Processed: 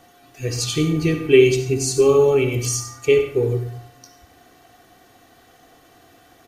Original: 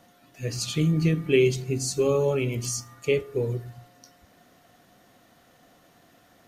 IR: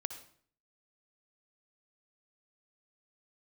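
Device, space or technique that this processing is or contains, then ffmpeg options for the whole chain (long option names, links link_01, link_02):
microphone above a desk: -filter_complex "[0:a]aecho=1:1:2.6:0.54[link_01];[1:a]atrim=start_sample=2205[link_02];[link_01][link_02]afir=irnorm=-1:irlink=0,volume=6dB"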